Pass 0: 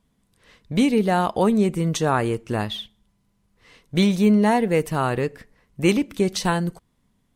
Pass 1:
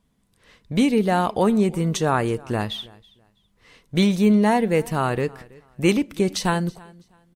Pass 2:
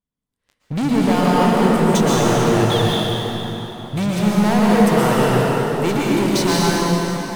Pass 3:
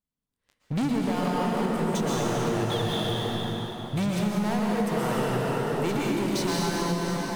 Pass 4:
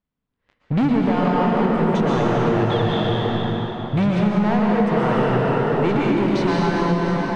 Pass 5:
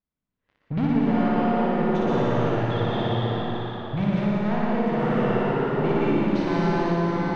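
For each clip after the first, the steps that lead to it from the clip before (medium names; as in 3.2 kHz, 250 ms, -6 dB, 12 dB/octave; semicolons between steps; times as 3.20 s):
feedback delay 327 ms, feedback 25%, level -23.5 dB
waveshaping leveller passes 5; plate-style reverb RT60 4.1 s, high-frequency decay 0.7×, pre-delay 105 ms, DRR -6 dB; trim -12 dB
compression, threshold -19 dBFS, peak gain reduction 10.5 dB; trim -4 dB
low-pass 2.5 kHz 12 dB/octave; trim +8 dB
distance through air 79 m; on a send: flutter echo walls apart 10.1 m, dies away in 1.4 s; on the sum: trim -7.5 dB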